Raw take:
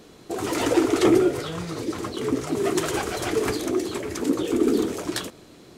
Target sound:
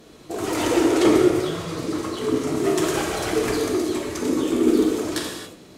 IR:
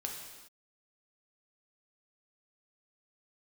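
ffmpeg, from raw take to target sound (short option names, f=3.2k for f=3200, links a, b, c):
-filter_complex "[1:a]atrim=start_sample=2205,afade=t=out:st=0.26:d=0.01,atrim=end_sample=11907,asetrate=32634,aresample=44100[a];[0:a][a]afir=irnorm=-1:irlink=0"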